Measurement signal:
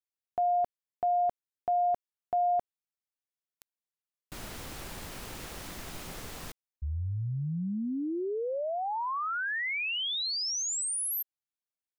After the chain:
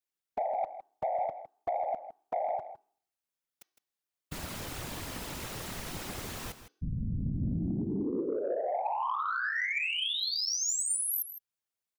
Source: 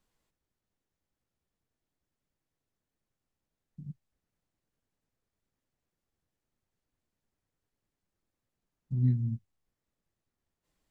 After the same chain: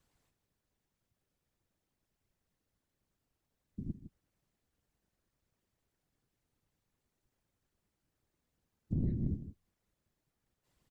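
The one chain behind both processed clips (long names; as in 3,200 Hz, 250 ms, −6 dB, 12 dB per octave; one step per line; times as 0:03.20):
hum removal 378.2 Hz, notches 17
downward compressor 12 to 1, threshold −31 dBFS
random phases in short frames
soft clipping −24.5 dBFS
single-tap delay 159 ms −12.5 dB
level +2.5 dB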